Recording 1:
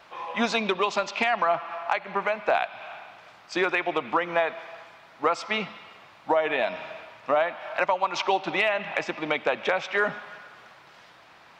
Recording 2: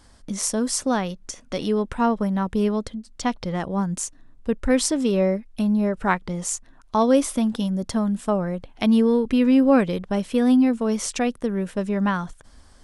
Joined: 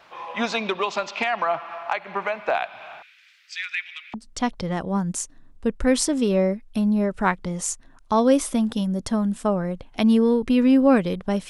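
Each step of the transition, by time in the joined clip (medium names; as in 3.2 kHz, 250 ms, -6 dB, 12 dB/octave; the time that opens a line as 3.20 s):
recording 1
3.02–4.14 s: steep high-pass 1.8 kHz 36 dB/octave
4.14 s: go over to recording 2 from 2.97 s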